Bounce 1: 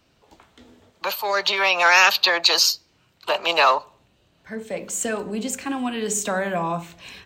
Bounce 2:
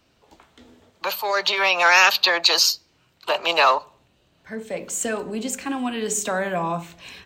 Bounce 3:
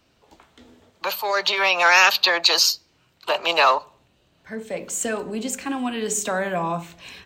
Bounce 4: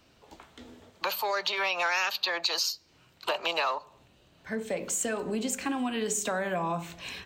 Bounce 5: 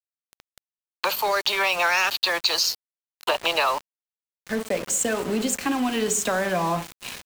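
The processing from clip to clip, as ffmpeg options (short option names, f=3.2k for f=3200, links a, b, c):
-af "bandreject=f=50:t=h:w=6,bandreject=f=100:t=h:w=6,bandreject=f=150:t=h:w=6,bandreject=f=200:t=h:w=6"
-af anull
-af "acompressor=threshold=-29dB:ratio=4,volume=1dB"
-filter_complex "[0:a]asplit=2[a][b];[b]adelay=215.7,volume=-23dB,highshelf=f=4k:g=-4.85[c];[a][c]amix=inputs=2:normalize=0,aeval=exprs='val(0)*gte(abs(val(0)),0.015)':c=same,volume=6.5dB"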